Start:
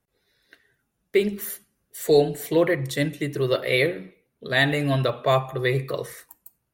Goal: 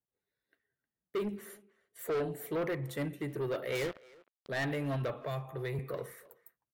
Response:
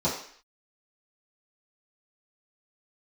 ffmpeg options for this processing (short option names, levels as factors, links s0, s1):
-filter_complex "[0:a]asettb=1/sr,asplit=3[s0][s1][s2];[s0]atrim=end=1.364[s3];[s1]atrim=start=1.36:end=1.99,asetpts=PTS-STARTPTS,afade=t=in:d=0.004:c=qsin,afade=t=out:st=0.626:d=0.004:c=qsin,lowpass=8400[s4];[s2]atrim=start=1.986[s5];[s3][s4]acrossfade=d=0.004:c1=hsin:c2=qsin[s6];[s6][s5]acrossfade=d=0.004:c1=qsin:c2=hsin,agate=range=0.282:threshold=0.00447:ratio=16:detection=peak,highpass=f=83:p=1,equalizer=f=5200:t=o:w=1.8:g=-11.5,asettb=1/sr,asplit=3[s7][s8][s9];[s7]atrim=end=3.754[s10];[s8]atrim=start=3.75:end=4.49,asetpts=PTS-STARTPTS,afade=t=in:d=0.004:c=qsin,afade=t=out:st=0.736:d=0.004:c=qsin,acrusher=bits=3:mix=0:aa=0.5[s11];[s9]atrim=start=4.486[s12];[s10][s11]acrossfade=d=0.004:c1=hsin:c2=qsin[s13];[s13][s12]acrossfade=d=0.004:c1=qsin:c2=hsin,asettb=1/sr,asplit=3[s14][s15][s16];[s14]atrim=end=5.144[s17];[s15]atrim=start=5.14:end=5.79,asetpts=PTS-STARTPTS,afade=t=in:d=0.004:c=qsin,afade=t=out:st=0.646:d=0.004:c=qsin,acrossover=split=180|3000[s18][s19][s20];[s19]acompressor=threshold=0.0398:ratio=6[s21];[s18][s21][s20]amix=inputs=3:normalize=0[s22];[s16]atrim=start=5.786[s23];[s17][s22]acrossfade=d=0.004:c1=hsin:c2=qsin[s24];[s24][s23]acrossfade=d=0.004:c1=qsin:c2=hsin,asoftclip=type=tanh:threshold=0.0794,asplit=2[s25][s26];[s26]adelay=310,highpass=300,lowpass=3400,asoftclip=type=hard:threshold=0.0299,volume=0.126[s27];[s25][s27]amix=inputs=2:normalize=0,volume=0.447"